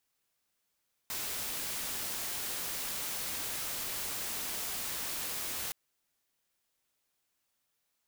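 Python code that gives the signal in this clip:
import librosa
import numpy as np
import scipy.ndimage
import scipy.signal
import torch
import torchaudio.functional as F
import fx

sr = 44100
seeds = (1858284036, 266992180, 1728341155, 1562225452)

y = fx.noise_colour(sr, seeds[0], length_s=4.62, colour='white', level_db=-37.0)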